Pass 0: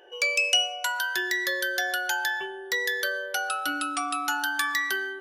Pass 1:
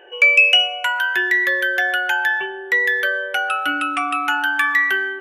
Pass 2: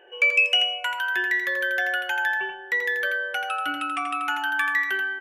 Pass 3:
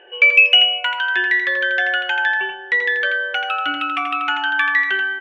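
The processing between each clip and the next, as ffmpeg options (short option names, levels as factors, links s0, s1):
-af "highshelf=f=3400:t=q:w=3:g=-10.5,volume=2.11"
-af "aecho=1:1:84:0.501,volume=0.447"
-af "lowpass=f=3400:t=q:w=1.6,volume=1.68"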